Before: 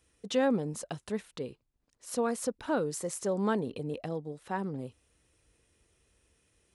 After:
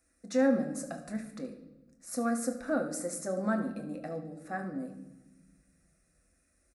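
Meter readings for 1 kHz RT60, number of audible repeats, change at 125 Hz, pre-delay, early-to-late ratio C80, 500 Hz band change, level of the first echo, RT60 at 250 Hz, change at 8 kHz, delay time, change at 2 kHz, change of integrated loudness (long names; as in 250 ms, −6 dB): 0.95 s, 1, −4.5 dB, 8 ms, 11.5 dB, −1.5 dB, −14.0 dB, 1.9 s, −0.5 dB, 73 ms, +1.0 dB, −0.5 dB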